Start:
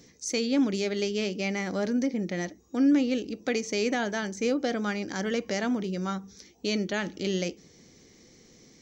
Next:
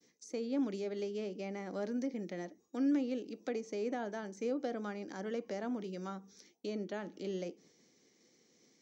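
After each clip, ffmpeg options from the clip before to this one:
-filter_complex "[0:a]highpass=220,agate=range=-33dB:threshold=-52dB:ratio=3:detection=peak,acrossover=split=570|1200[a][b][c];[c]acompressor=threshold=-45dB:ratio=6[d];[a][b][d]amix=inputs=3:normalize=0,volume=-8dB"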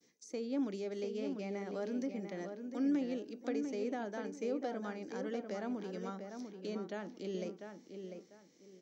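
-filter_complex "[0:a]asplit=2[a][b];[b]adelay=696,lowpass=f=2.7k:p=1,volume=-6.5dB,asplit=2[c][d];[d]adelay=696,lowpass=f=2.7k:p=1,volume=0.27,asplit=2[e][f];[f]adelay=696,lowpass=f=2.7k:p=1,volume=0.27[g];[a][c][e][g]amix=inputs=4:normalize=0,volume=-1.5dB"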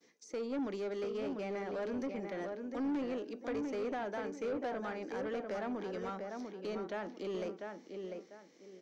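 -filter_complex "[0:a]asplit=2[a][b];[b]highpass=f=720:p=1,volume=20dB,asoftclip=type=tanh:threshold=-25dB[c];[a][c]amix=inputs=2:normalize=0,lowpass=f=1.6k:p=1,volume=-6dB,volume=-3.5dB"

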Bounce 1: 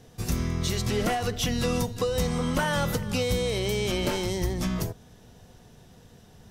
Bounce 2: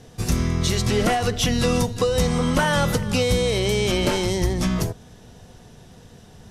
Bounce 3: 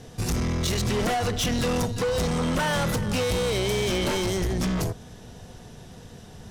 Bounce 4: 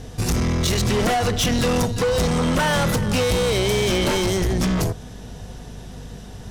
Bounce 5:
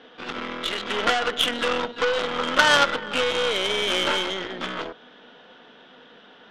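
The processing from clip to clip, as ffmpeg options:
-af "lowpass=f=12k:w=0.5412,lowpass=f=12k:w=1.3066,volume=6dB"
-af "asoftclip=type=tanh:threshold=-24dB,volume=2dB"
-af "aeval=exprs='val(0)+0.00708*(sin(2*PI*50*n/s)+sin(2*PI*2*50*n/s)/2+sin(2*PI*3*50*n/s)/3+sin(2*PI*4*50*n/s)/4+sin(2*PI*5*50*n/s)/5)':c=same,volume=5dB"
-af "highpass=f=300:w=0.5412,highpass=f=300:w=1.3066,equalizer=f=380:t=q:w=4:g=-7,equalizer=f=710:t=q:w=4:g=-4,equalizer=f=1.4k:t=q:w=4:g=8,equalizer=f=3.3k:t=q:w=4:g=9,lowpass=f=3.3k:w=0.5412,lowpass=f=3.3k:w=1.3066,aeval=exprs='0.398*(cos(1*acos(clip(val(0)/0.398,-1,1)))-cos(1*PI/2))+0.0891*(cos(3*acos(clip(val(0)/0.398,-1,1)))-cos(3*PI/2))+0.0398*(cos(4*acos(clip(val(0)/0.398,-1,1)))-cos(4*PI/2))+0.0316*(cos(6*acos(clip(val(0)/0.398,-1,1)))-cos(6*PI/2))':c=same,volume=6dB"

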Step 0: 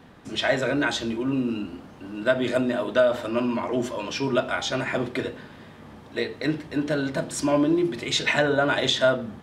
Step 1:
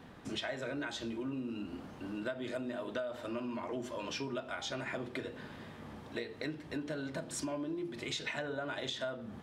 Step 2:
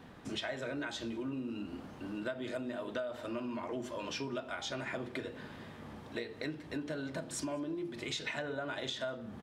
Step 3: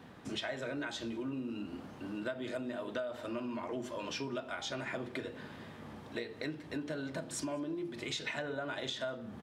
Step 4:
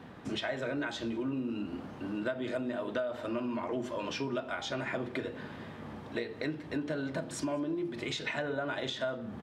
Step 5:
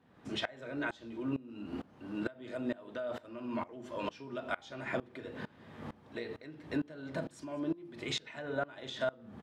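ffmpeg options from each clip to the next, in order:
-af "acompressor=threshold=-33dB:ratio=6,volume=-3.5dB"
-filter_complex "[0:a]asplit=2[a][b];[b]adelay=198.3,volume=-25dB,highshelf=f=4k:g=-4.46[c];[a][c]amix=inputs=2:normalize=0"
-af "highpass=66"
-af "highshelf=f=4.4k:g=-8,volume=4.5dB"
-af "aeval=exprs='val(0)*pow(10,-23*if(lt(mod(-2.2*n/s,1),2*abs(-2.2)/1000),1-mod(-2.2*n/s,1)/(2*abs(-2.2)/1000),(mod(-2.2*n/s,1)-2*abs(-2.2)/1000)/(1-2*abs(-2.2)/1000))/20)':c=same,volume=3dB"

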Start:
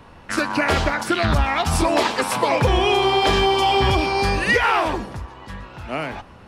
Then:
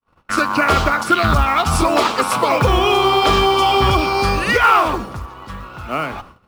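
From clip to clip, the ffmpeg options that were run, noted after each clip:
-af "superequalizer=10b=2.24:11b=0.708,agate=range=-55dB:threshold=-40dB:ratio=16:detection=peak,acrusher=bits=7:mode=log:mix=0:aa=0.000001,volume=2.5dB"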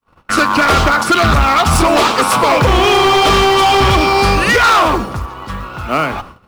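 -af "volume=14.5dB,asoftclip=hard,volume=-14.5dB,volume=7dB"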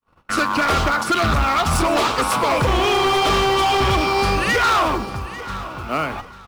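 -af "aecho=1:1:844|1688|2532:0.168|0.042|0.0105,volume=-7dB"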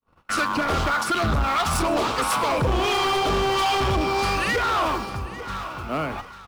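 -filter_complex "[0:a]acrossover=split=730[a][b];[a]aeval=exprs='val(0)*(1-0.5/2+0.5/2*cos(2*PI*1.5*n/s))':c=same[c];[b]aeval=exprs='val(0)*(1-0.5/2-0.5/2*cos(2*PI*1.5*n/s))':c=same[d];[c][d]amix=inputs=2:normalize=0,asoftclip=type=tanh:threshold=-16dB"

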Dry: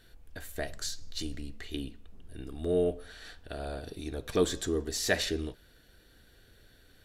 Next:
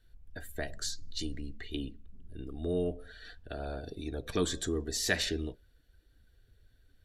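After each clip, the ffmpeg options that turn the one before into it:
-filter_complex "[0:a]afftdn=nr=14:nf=-50,acrossover=split=360|880[a][b][c];[b]acompressor=threshold=-40dB:ratio=6[d];[a][d][c]amix=inputs=3:normalize=0"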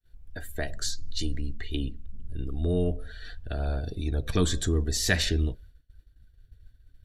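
-af "agate=range=-33dB:threshold=-55dB:ratio=3:detection=peak,asubboost=boost=3:cutoff=190,volume=4.5dB"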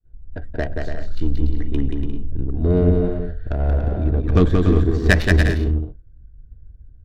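-filter_complex "[0:a]adynamicsmooth=sensitivity=1.5:basefreq=660,asplit=2[a][b];[b]aecho=0:1:180|288|352.8|391.7|415:0.631|0.398|0.251|0.158|0.1[c];[a][c]amix=inputs=2:normalize=0,volume=9dB"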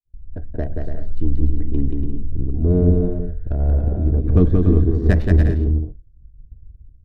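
-af "agate=range=-33dB:threshold=-37dB:ratio=3:detection=peak,tiltshelf=f=940:g=9.5,volume=-7.5dB"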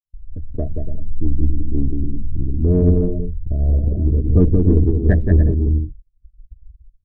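-filter_complex "[0:a]afftdn=nr=25:nf=-23,asplit=2[a][b];[b]asoftclip=type=tanh:threshold=-19dB,volume=-11dB[c];[a][c]amix=inputs=2:normalize=0"

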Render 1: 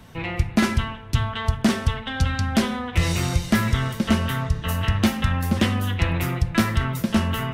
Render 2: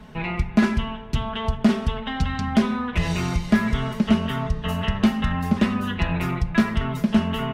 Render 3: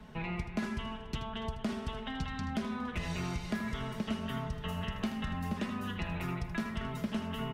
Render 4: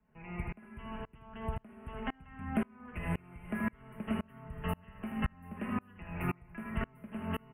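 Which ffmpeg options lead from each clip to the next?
-filter_complex "[0:a]aecho=1:1:4.8:0.74,asplit=2[a][b];[b]acompressor=threshold=-24dB:ratio=6,volume=-0.5dB[c];[a][c]amix=inputs=2:normalize=0,lowpass=f=2.3k:p=1,volume=-4dB"
-filter_complex "[0:a]acrossover=split=350|5400[a][b][c];[a]acompressor=threshold=-28dB:ratio=4[d];[b]acompressor=threshold=-32dB:ratio=4[e];[c]acompressor=threshold=-48dB:ratio=4[f];[d][e][f]amix=inputs=3:normalize=0,asplit=2[g][h];[h]aecho=0:1:79|235|286:0.282|0.119|0.119[i];[g][i]amix=inputs=2:normalize=0,volume=-7.5dB"
-af "asuperstop=centerf=5100:order=12:qfactor=0.82,aeval=exprs='val(0)*pow(10,-32*if(lt(mod(-1.9*n/s,1),2*abs(-1.9)/1000),1-mod(-1.9*n/s,1)/(2*abs(-1.9)/1000),(mod(-1.9*n/s,1)-2*abs(-1.9)/1000)/(1-2*abs(-1.9)/1000))/20)':c=same,volume=6.5dB"

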